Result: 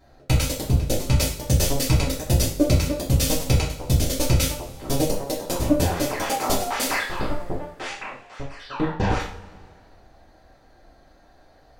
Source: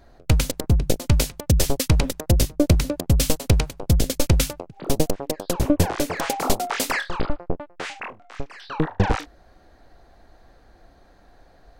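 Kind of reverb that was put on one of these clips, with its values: two-slope reverb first 0.41 s, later 2.1 s, from -21 dB, DRR -6.5 dB; gain -7 dB

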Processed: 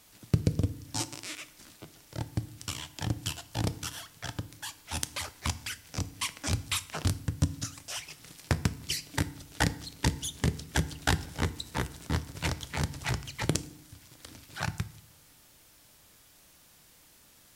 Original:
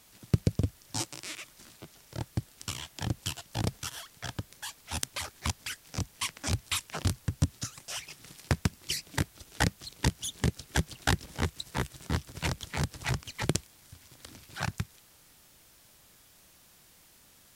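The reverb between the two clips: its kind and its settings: FDN reverb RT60 0.63 s, low-frequency decay 1.55×, high-frequency decay 0.85×, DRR 12.5 dB

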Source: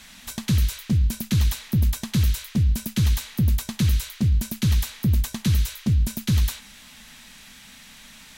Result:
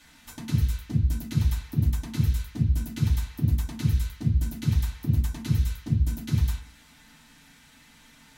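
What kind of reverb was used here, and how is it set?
FDN reverb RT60 0.3 s, low-frequency decay 1.55×, high-frequency decay 0.35×, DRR -4.5 dB; gain -12 dB

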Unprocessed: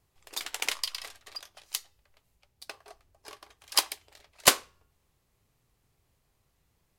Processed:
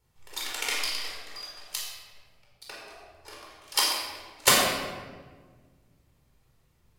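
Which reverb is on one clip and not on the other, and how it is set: shoebox room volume 1400 m³, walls mixed, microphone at 4.4 m; gain -4 dB

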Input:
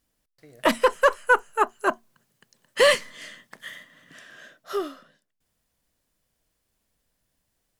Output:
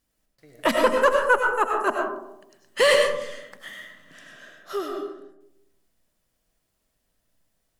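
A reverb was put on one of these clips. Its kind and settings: digital reverb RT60 0.87 s, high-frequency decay 0.3×, pre-delay 60 ms, DRR 1 dB; gain -1.5 dB

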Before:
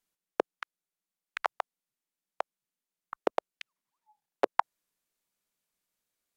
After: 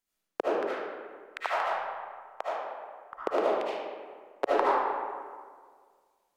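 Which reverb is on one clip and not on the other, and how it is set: digital reverb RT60 1.8 s, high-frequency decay 0.55×, pre-delay 35 ms, DRR -9 dB; gain -4 dB

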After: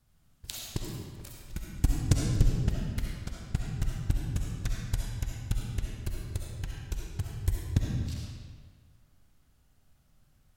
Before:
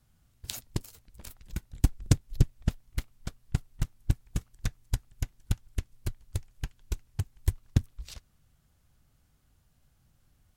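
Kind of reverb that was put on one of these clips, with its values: digital reverb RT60 1.7 s, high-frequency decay 0.8×, pre-delay 25 ms, DRR -2 dB; gain -2.5 dB

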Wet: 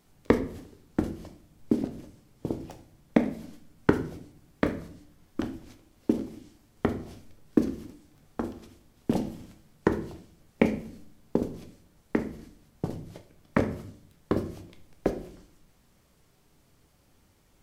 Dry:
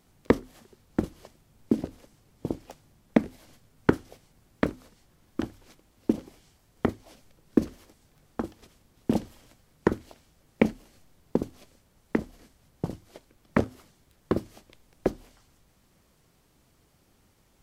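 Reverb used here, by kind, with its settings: shoebox room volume 75 m³, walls mixed, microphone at 0.37 m; gain -1 dB

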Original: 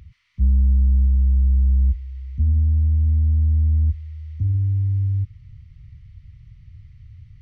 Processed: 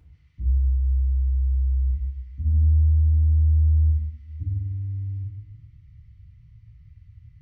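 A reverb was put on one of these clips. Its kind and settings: FDN reverb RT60 1.2 s, low-frequency decay 1.1×, high-frequency decay 0.35×, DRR -4.5 dB; gain -12 dB

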